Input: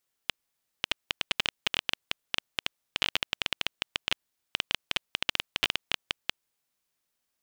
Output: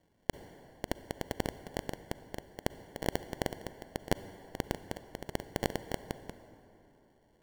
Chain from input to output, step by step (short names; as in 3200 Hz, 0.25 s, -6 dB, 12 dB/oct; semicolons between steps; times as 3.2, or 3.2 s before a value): 2.49–4.84 inverse Chebyshev high-pass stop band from 170 Hz, stop band 70 dB; limiter -22.5 dBFS, peak gain reduction 15 dB; sample-and-hold 35×; reverb RT60 3.3 s, pre-delay 33 ms, DRR 12.5 dB; gain +9.5 dB